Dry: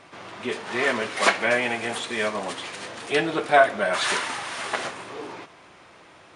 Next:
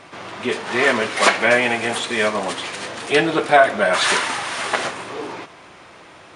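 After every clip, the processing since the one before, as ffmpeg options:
-af "alimiter=level_in=2.37:limit=0.891:release=50:level=0:latency=1,volume=0.891"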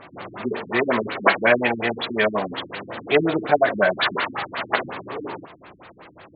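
-af "afftfilt=real='re*lt(b*sr/1024,310*pow(4800/310,0.5+0.5*sin(2*PI*5.5*pts/sr)))':imag='im*lt(b*sr/1024,310*pow(4800/310,0.5+0.5*sin(2*PI*5.5*pts/sr)))':win_size=1024:overlap=0.75"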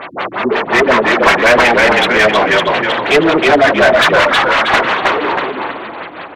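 -filter_complex "[0:a]asplit=6[s0][s1][s2][s3][s4][s5];[s1]adelay=318,afreqshift=-42,volume=0.596[s6];[s2]adelay=636,afreqshift=-84,volume=0.226[s7];[s3]adelay=954,afreqshift=-126,volume=0.0861[s8];[s4]adelay=1272,afreqshift=-168,volume=0.0327[s9];[s5]adelay=1590,afreqshift=-210,volume=0.0124[s10];[s0][s6][s7][s8][s9][s10]amix=inputs=6:normalize=0,asplit=2[s11][s12];[s12]highpass=f=720:p=1,volume=15.8,asoftclip=type=tanh:threshold=0.794[s13];[s11][s13]amix=inputs=2:normalize=0,lowpass=f=3300:p=1,volume=0.501,volume=1.19"

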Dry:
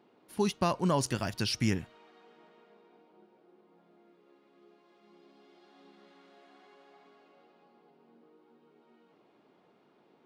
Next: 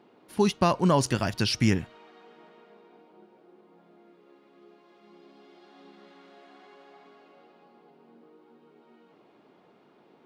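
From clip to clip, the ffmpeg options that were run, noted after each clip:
-af "highshelf=f=8100:g=-6.5,volume=2"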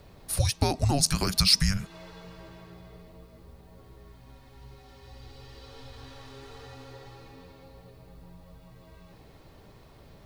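-af "acompressor=threshold=0.0251:ratio=3,afreqshift=-290,aexciter=amount=4.5:drive=2.2:freq=4100,volume=2.24"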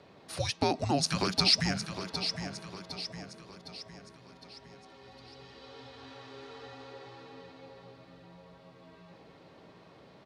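-af "highpass=190,lowpass=4700,aecho=1:1:759|1518|2277|3036|3795:0.355|0.17|0.0817|0.0392|0.0188"

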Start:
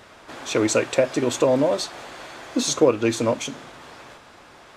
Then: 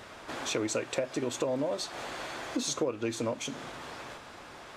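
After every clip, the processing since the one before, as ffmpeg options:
-af "acompressor=threshold=0.0251:ratio=3"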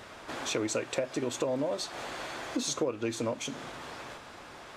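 -af anull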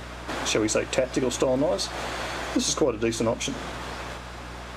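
-af "aeval=exprs='val(0)+0.00398*(sin(2*PI*60*n/s)+sin(2*PI*2*60*n/s)/2+sin(2*PI*3*60*n/s)/3+sin(2*PI*4*60*n/s)/4+sin(2*PI*5*60*n/s)/5)':c=same,volume=2.37"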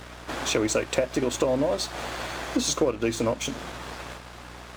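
-af "aeval=exprs='sgn(val(0))*max(abs(val(0))-0.0075,0)':c=same"

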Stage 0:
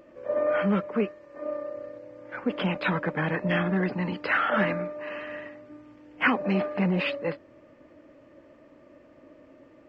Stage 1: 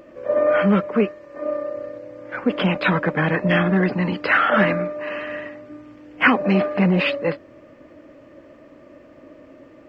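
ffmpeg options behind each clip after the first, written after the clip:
-af "bandreject=f=890:w=21,volume=2.37"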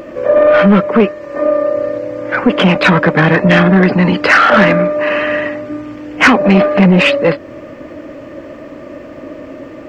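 -filter_complex "[0:a]asplit=2[s0][s1];[s1]acompressor=threshold=0.0447:ratio=6,volume=1.19[s2];[s0][s2]amix=inputs=2:normalize=0,asoftclip=type=tanh:threshold=0.299,volume=2.82"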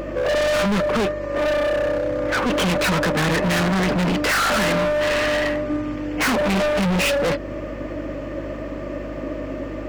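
-af "volume=8.41,asoftclip=hard,volume=0.119,aeval=exprs='val(0)+0.0178*(sin(2*PI*50*n/s)+sin(2*PI*2*50*n/s)/2+sin(2*PI*3*50*n/s)/3+sin(2*PI*4*50*n/s)/4+sin(2*PI*5*50*n/s)/5)':c=same"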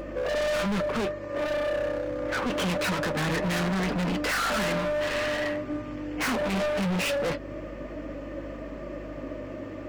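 -af "flanger=delay=3.9:depth=8.6:regen=-59:speed=0.24:shape=sinusoidal,volume=0.668"

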